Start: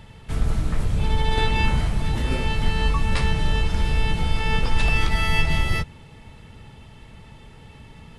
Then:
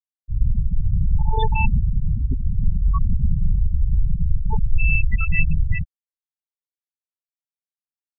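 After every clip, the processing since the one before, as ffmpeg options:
ffmpeg -i in.wav -af "afftfilt=real='re*gte(hypot(re,im),0.316)':imag='im*gte(hypot(re,im),0.316)':win_size=1024:overlap=0.75,volume=3dB" out.wav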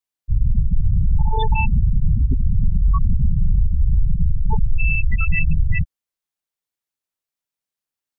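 ffmpeg -i in.wav -af "alimiter=limit=-16dB:level=0:latency=1:release=105,volume=7dB" out.wav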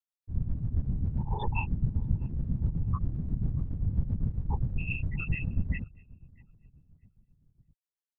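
ffmpeg -i in.wav -filter_complex "[0:a]asplit=2[link_01][link_02];[link_02]adelay=631,lowpass=frequency=960:poles=1,volume=-23.5dB,asplit=2[link_03][link_04];[link_04]adelay=631,lowpass=frequency=960:poles=1,volume=0.53,asplit=2[link_05][link_06];[link_06]adelay=631,lowpass=frequency=960:poles=1,volume=0.53[link_07];[link_01][link_03][link_05][link_07]amix=inputs=4:normalize=0,afftfilt=real='hypot(re,im)*cos(2*PI*random(0))':imag='hypot(re,im)*sin(2*PI*random(1))':win_size=512:overlap=0.75,tremolo=f=7.5:d=0.62,volume=-4dB" out.wav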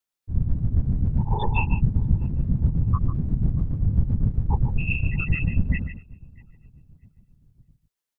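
ffmpeg -i in.wav -af "aecho=1:1:147:0.316,volume=7.5dB" out.wav

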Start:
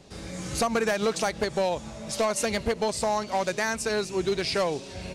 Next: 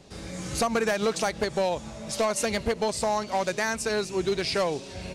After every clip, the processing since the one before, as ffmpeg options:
ffmpeg -i in.wav -af anull out.wav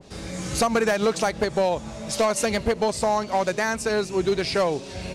ffmpeg -i in.wav -af "adynamicequalizer=threshold=0.01:dfrequency=1900:dqfactor=0.7:tfrequency=1900:tqfactor=0.7:attack=5:release=100:ratio=0.375:range=2:mode=cutabove:tftype=highshelf,volume=4dB" out.wav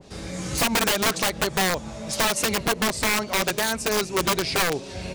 ffmpeg -i in.wav -af "aeval=exprs='(mod(6.68*val(0)+1,2)-1)/6.68':channel_layout=same" out.wav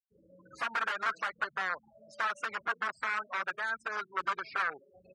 ffmpeg -i in.wav -af "afftfilt=real='re*gte(hypot(re,im),0.0562)':imag='im*gte(hypot(re,im),0.0562)':win_size=1024:overlap=0.75,bandpass=frequency=1400:width_type=q:width=4:csg=0" out.wav

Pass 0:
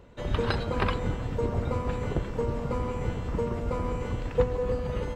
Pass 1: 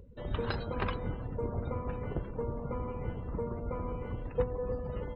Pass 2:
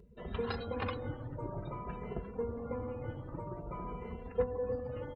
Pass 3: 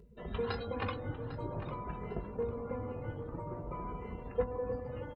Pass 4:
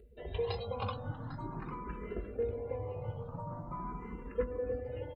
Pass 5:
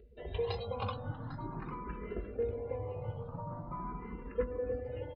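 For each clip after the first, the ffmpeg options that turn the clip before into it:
ffmpeg -i in.wav -af "afftdn=noise_reduction=27:noise_floor=-43,acompressor=mode=upward:threshold=-36dB:ratio=2.5,volume=-6.5dB" out.wav
ffmpeg -i in.wav -filter_complex "[0:a]lowshelf=frequency=70:gain=-9.5,asplit=2[link_01][link_02];[link_02]adelay=2.6,afreqshift=0.51[link_03];[link_01][link_03]amix=inputs=2:normalize=1,volume=1dB" out.wav
ffmpeg -i in.wav -filter_complex "[0:a]asplit=2[link_01][link_02];[link_02]adelay=19,volume=-11.5dB[link_03];[link_01][link_03]amix=inputs=2:normalize=0,asplit=2[link_04][link_05];[link_05]adelay=800,lowpass=frequency=2700:poles=1,volume=-11dB,asplit=2[link_06][link_07];[link_07]adelay=800,lowpass=frequency=2700:poles=1,volume=0.34,asplit=2[link_08][link_09];[link_09]adelay=800,lowpass=frequency=2700:poles=1,volume=0.34,asplit=2[link_10][link_11];[link_11]adelay=800,lowpass=frequency=2700:poles=1,volume=0.34[link_12];[link_04][link_06][link_08][link_10][link_12]amix=inputs=5:normalize=0" out.wav
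ffmpeg -i in.wav -filter_complex "[0:a]asplit=2[link_01][link_02];[link_02]afreqshift=0.42[link_03];[link_01][link_03]amix=inputs=2:normalize=1,volume=2dB" out.wav
ffmpeg -i in.wav -af "aresample=11025,aresample=44100" out.wav

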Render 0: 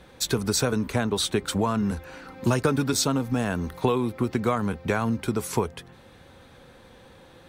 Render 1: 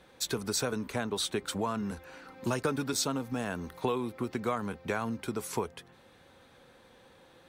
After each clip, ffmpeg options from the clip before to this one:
ffmpeg -i in.wav -af "lowshelf=frequency=160:gain=-9,volume=-6dB" out.wav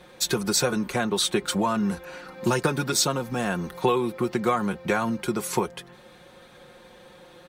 ffmpeg -i in.wav -af "aecho=1:1:5.6:0.61,volume=7dB" out.wav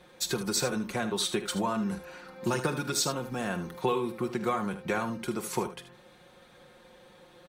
ffmpeg -i in.wav -af "aecho=1:1:46|77:0.168|0.266,volume=-6dB" out.wav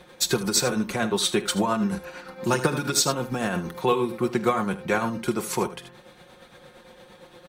ffmpeg -i in.wav -af "tremolo=f=8.7:d=0.47,volume=8dB" out.wav

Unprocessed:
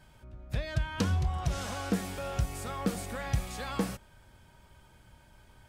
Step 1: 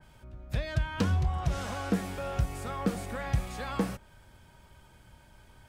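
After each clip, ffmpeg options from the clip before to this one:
ffmpeg -i in.wav -filter_complex "[0:a]acrossover=split=400|5200[link_01][link_02][link_03];[link_03]asoftclip=type=tanh:threshold=-37.5dB[link_04];[link_01][link_02][link_04]amix=inputs=3:normalize=0,adynamicequalizer=threshold=0.00251:dfrequency=2800:dqfactor=0.7:tfrequency=2800:tqfactor=0.7:attack=5:release=100:ratio=0.375:range=2.5:mode=cutabove:tftype=highshelf,volume=1.5dB" out.wav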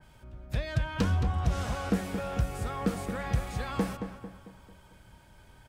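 ffmpeg -i in.wav -filter_complex "[0:a]asplit=2[link_01][link_02];[link_02]adelay=223,lowpass=frequency=2400:poles=1,volume=-8dB,asplit=2[link_03][link_04];[link_04]adelay=223,lowpass=frequency=2400:poles=1,volume=0.48,asplit=2[link_05][link_06];[link_06]adelay=223,lowpass=frequency=2400:poles=1,volume=0.48,asplit=2[link_07][link_08];[link_08]adelay=223,lowpass=frequency=2400:poles=1,volume=0.48,asplit=2[link_09][link_10];[link_10]adelay=223,lowpass=frequency=2400:poles=1,volume=0.48,asplit=2[link_11][link_12];[link_12]adelay=223,lowpass=frequency=2400:poles=1,volume=0.48[link_13];[link_01][link_03][link_05][link_07][link_09][link_11][link_13]amix=inputs=7:normalize=0" out.wav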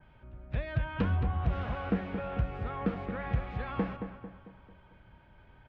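ffmpeg -i in.wav -af "lowpass=frequency=2900:width=0.5412,lowpass=frequency=2900:width=1.3066,volume=-2dB" out.wav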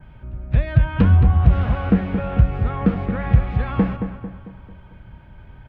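ffmpeg -i in.wav -af "bass=frequency=250:gain=8,treble=frequency=4000:gain=-2,volume=8.5dB" out.wav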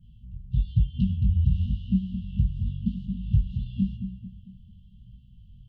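ffmpeg -i in.wav -af "afftfilt=real='re*(1-between(b*sr/4096,240,2700))':imag='im*(1-between(b*sr/4096,240,2700))':win_size=4096:overlap=0.75,flanger=delay=16:depth=7.5:speed=0.95,volume=-4.5dB" out.wav

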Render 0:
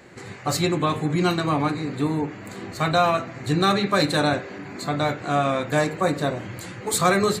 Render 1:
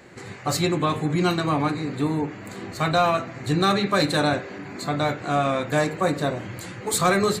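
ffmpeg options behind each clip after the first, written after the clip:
ffmpeg -i in.wav -af "asoftclip=type=tanh:threshold=-7.5dB" out.wav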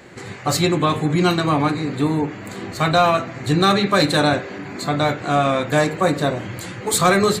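ffmpeg -i in.wav -af "equalizer=frequency=3300:width=4.9:gain=2.5,volume=4.5dB" out.wav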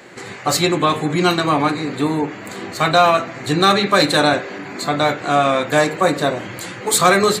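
ffmpeg -i in.wav -af "highpass=frequency=290:poles=1,volume=3.5dB" out.wav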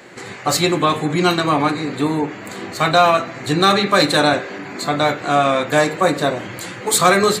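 ffmpeg -i in.wav -af "bandreject=frequency=399:width_type=h:width=4,bandreject=frequency=798:width_type=h:width=4,bandreject=frequency=1197:width_type=h:width=4,bandreject=frequency=1596:width_type=h:width=4,bandreject=frequency=1995:width_type=h:width=4,bandreject=frequency=2394:width_type=h:width=4,bandreject=frequency=2793:width_type=h:width=4,bandreject=frequency=3192:width_type=h:width=4,bandreject=frequency=3591:width_type=h:width=4,bandreject=frequency=3990:width_type=h:width=4,bandreject=frequency=4389:width_type=h:width=4,bandreject=frequency=4788:width_type=h:width=4,bandreject=frequency=5187:width_type=h:width=4,bandreject=frequency=5586:width_type=h:width=4,bandreject=frequency=5985:width_type=h:width=4,bandreject=frequency=6384:width_type=h:width=4,bandreject=frequency=6783:width_type=h:width=4,bandreject=frequency=7182:width_type=h:width=4,bandreject=frequency=7581:width_type=h:width=4,bandreject=frequency=7980:width_type=h:width=4,bandreject=frequency=8379:width_type=h:width=4,bandreject=frequency=8778:width_type=h:width=4,bandreject=frequency=9177:width_type=h:width=4,bandreject=frequency=9576:width_type=h:width=4,bandreject=frequency=9975:width_type=h:width=4,bandreject=frequency=10374:width_type=h:width=4,bandreject=frequency=10773:width_type=h:width=4,bandreject=frequency=11172:width_type=h:width=4,bandreject=frequency=11571:width_type=h:width=4,bandreject=frequency=11970:width_type=h:width=4,bandreject=frequency=12369:width_type=h:width=4,bandreject=frequency=12768:width_type=h:width=4,bandreject=frequency=13167:width_type=h:width=4,bandreject=frequency=13566:width_type=h:width=4,bandreject=frequency=13965:width_type=h:width=4,bandreject=frequency=14364:width_type=h:width=4,bandreject=frequency=14763:width_type=h:width=4,bandreject=frequency=15162:width_type=h:width=4,bandreject=frequency=15561:width_type=h:width=4,bandreject=frequency=15960:width_type=h:width=4" out.wav

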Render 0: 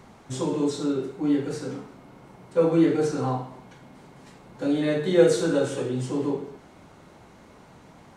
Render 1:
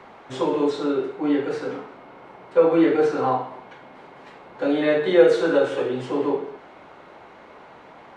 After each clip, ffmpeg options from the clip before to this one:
ffmpeg -i in.wav -filter_complex "[0:a]acrossover=split=350 3600:gain=0.158 1 0.0891[link_01][link_02][link_03];[link_01][link_02][link_03]amix=inputs=3:normalize=0,asplit=2[link_04][link_05];[link_05]alimiter=limit=-18.5dB:level=0:latency=1:release=362,volume=-1.5dB[link_06];[link_04][link_06]amix=inputs=2:normalize=0,volume=3dB" out.wav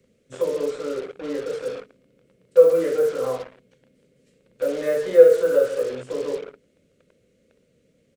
ffmpeg -i in.wav -filter_complex "[0:a]firequalizer=gain_entry='entry(220,0);entry(340,-6);entry(510,13);entry(820,-12);entry(1200,2);entry(3700,-7);entry(7800,8)':delay=0.05:min_phase=1,acrossover=split=340|3000[link_01][link_02][link_03];[link_02]acrusher=bits=4:mix=0:aa=0.5[link_04];[link_01][link_04][link_03]amix=inputs=3:normalize=0,volume=-7.5dB" out.wav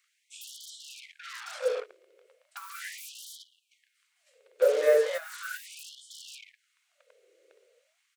ffmpeg -i in.wav -af "alimiter=limit=-12dB:level=0:latency=1:release=241,afftfilt=real='re*gte(b*sr/1024,320*pow(3000/320,0.5+0.5*sin(2*PI*0.37*pts/sr)))':imag='im*gte(b*sr/1024,320*pow(3000/320,0.5+0.5*sin(2*PI*0.37*pts/sr)))':win_size=1024:overlap=0.75,volume=1.5dB" out.wav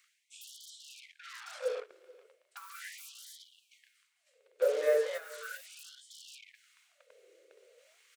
ffmpeg -i in.wav -filter_complex "[0:a]areverse,acompressor=mode=upward:threshold=-47dB:ratio=2.5,areverse,asplit=2[link_01][link_02];[link_02]adelay=431.5,volume=-23dB,highshelf=frequency=4000:gain=-9.71[link_03];[link_01][link_03]amix=inputs=2:normalize=0,volume=-5.5dB" out.wav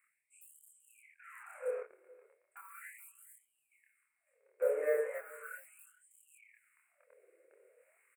ffmpeg -i in.wav -filter_complex "[0:a]asuperstop=centerf=4500:order=12:qfactor=0.82,asplit=2[link_01][link_02];[link_02]adelay=26,volume=-2dB[link_03];[link_01][link_03]amix=inputs=2:normalize=0,volume=-5.5dB" out.wav

